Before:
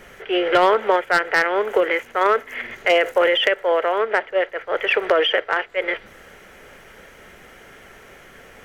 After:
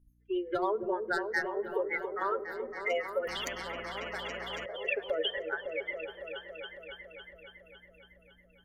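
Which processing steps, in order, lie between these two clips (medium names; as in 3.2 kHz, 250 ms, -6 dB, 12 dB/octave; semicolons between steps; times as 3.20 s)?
expander on every frequency bin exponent 3; rotary cabinet horn 7 Hz; compression 2.5:1, threshold -36 dBFS, peak gain reduction 12 dB; hum 60 Hz, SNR 31 dB; delay with an opening low-pass 278 ms, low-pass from 400 Hz, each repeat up 1 oct, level -3 dB; on a send at -22 dB: reverberation RT60 2.1 s, pre-delay 4 ms; 3.27–4.66 s: on the sum: spectrum-flattening compressor 4:1; trim +2.5 dB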